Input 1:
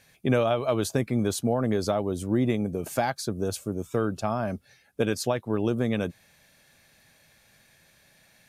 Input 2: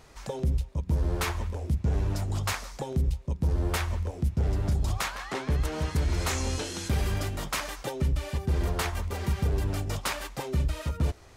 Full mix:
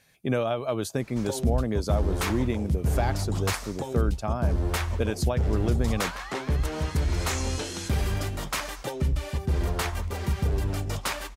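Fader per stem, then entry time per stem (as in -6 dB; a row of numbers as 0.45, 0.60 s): -3.0, +1.0 dB; 0.00, 1.00 s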